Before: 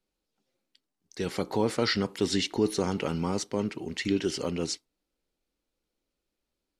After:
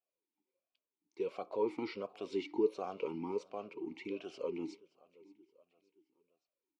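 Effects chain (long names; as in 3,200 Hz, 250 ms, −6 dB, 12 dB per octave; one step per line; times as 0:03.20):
repeating echo 573 ms, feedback 51%, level −23.5 dB
formant filter swept between two vowels a-u 1.4 Hz
level +1 dB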